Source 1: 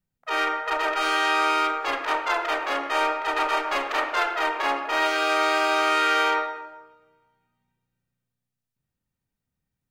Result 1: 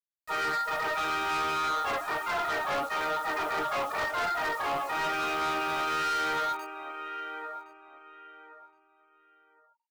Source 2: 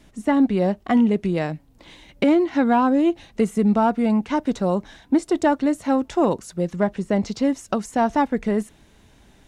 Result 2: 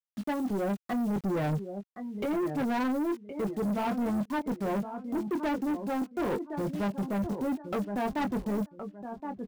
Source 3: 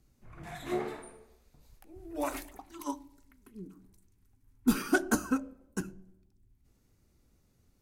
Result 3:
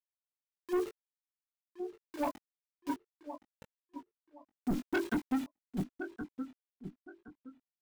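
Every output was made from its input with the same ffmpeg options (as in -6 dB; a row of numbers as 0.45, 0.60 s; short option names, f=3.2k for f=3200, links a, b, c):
-filter_complex "[0:a]afftfilt=real='re*gte(hypot(re,im),0.1)':imag='im*gte(hypot(re,im),0.1)':win_size=1024:overlap=0.75,agate=range=-11dB:threshold=-34dB:ratio=16:detection=peak,areverse,acompressor=threshold=-30dB:ratio=8,areverse,asuperstop=centerf=4700:order=4:qfactor=7.2,adynamicsmooth=sensitivity=4:basefreq=6.1k,acrusher=bits=8:mix=0:aa=0.000001,aphaser=in_gain=1:out_gain=1:delay=2.9:decay=0.22:speed=0.73:type=sinusoidal,asplit=2[a][b];[b]adelay=20,volume=-5.5dB[c];[a][c]amix=inputs=2:normalize=0,asplit=2[d][e];[e]adelay=1068,lowpass=f=3.1k:p=1,volume=-14dB,asplit=2[f][g];[g]adelay=1068,lowpass=f=3.1k:p=1,volume=0.25,asplit=2[h][i];[i]adelay=1068,lowpass=f=3.1k:p=1,volume=0.25[j];[d][f][h][j]amix=inputs=4:normalize=0,asoftclip=type=tanh:threshold=-34dB,volume=7.5dB"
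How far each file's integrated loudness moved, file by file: -6.5, -10.5, -4.0 LU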